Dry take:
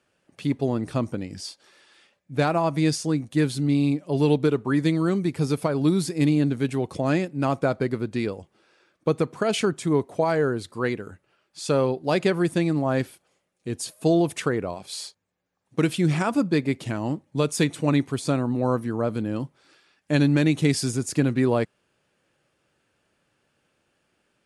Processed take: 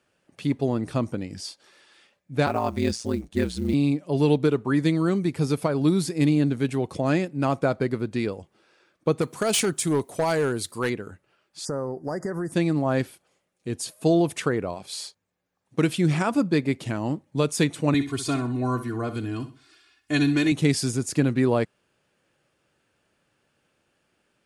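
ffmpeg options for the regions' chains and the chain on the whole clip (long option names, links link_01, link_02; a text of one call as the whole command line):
ffmpeg -i in.wav -filter_complex "[0:a]asettb=1/sr,asplit=3[link_01][link_02][link_03];[link_01]atrim=end=2.464[link_04];[link_02]atrim=start=2.46:end=3.74,asetpts=PTS-STARTPTS,afade=type=in:duration=0.004:curve=qsin,afade=type=out:start_time=1.276:duration=0.004:curve=qsin,lowpass=8800,acrusher=bits=8:mode=log:mix=0:aa=0.000001,aeval=exprs='val(0)*sin(2*PI*59*n/s)':channel_layout=same[link_05];[link_03]atrim=start=3.736[link_06];[link_04][link_05]acrossfade=duration=0.004:curve1=hsin:curve2=qsin[link_07];[link_07][link_06]acrossfade=duration=0.004:curve1=qsin:curve2=hsin,asettb=1/sr,asplit=3[link_08][link_09][link_10];[link_08]atrim=end=9.214[link_11];[link_09]atrim=start=9.21:end=10.9,asetpts=PTS-STARTPTS,afade=type=in:duration=0.004:curve=qsin,afade=type=out:start_time=1.686:duration=0.004:curve=qsin,aemphasis=mode=production:type=75fm,volume=17.5dB,asoftclip=hard,volume=-17.5dB[link_12];[link_10]atrim=start=10.896[link_13];[link_11][link_12]acrossfade=duration=0.004:curve1=hsin:curve2=qsin[link_14];[link_14][link_13]acrossfade=duration=0.004:curve1=qsin:curve2=hsin,asettb=1/sr,asplit=3[link_15][link_16][link_17];[link_15]atrim=end=11.654[link_18];[link_16]atrim=start=11.65:end=12.52,asetpts=PTS-STARTPTS,afade=type=in:duration=0.004:curve=qsin,afade=type=out:start_time=0.866:duration=0.004:curve=qsin,acompressor=threshold=-25dB:ratio=6:attack=3.2:release=140:knee=1:detection=peak,asuperstop=centerf=3100:order=20:qfactor=1.1[link_19];[link_17]atrim=start=12.516[link_20];[link_18][link_19]acrossfade=duration=0.004:curve1=hsin:curve2=qsin[link_21];[link_21][link_20]acrossfade=duration=0.004:curve1=qsin:curve2=hsin,asettb=1/sr,asplit=3[link_22][link_23][link_24];[link_22]atrim=end=17.944[link_25];[link_23]atrim=start=17.94:end=20.52,asetpts=PTS-STARTPTS,afade=type=in:duration=0.004:curve=qsin,afade=type=out:start_time=2.576:duration=0.004:curve=qsin,equalizer=frequency=520:width_type=o:width=2:gain=-8,aecho=1:1:2.8:0.96,atrim=end_sample=113778,aecho=1:1:64|128|192:0.251|0.0779|0.0241,atrim=end_sample=113778[link_26];[link_24]atrim=start=20.516[link_27];[link_25][link_26]acrossfade=duration=0.004:curve1=hsin:curve2=qsin[link_28];[link_28][link_27]acrossfade=duration=0.004:curve1=qsin:curve2=hsin" out.wav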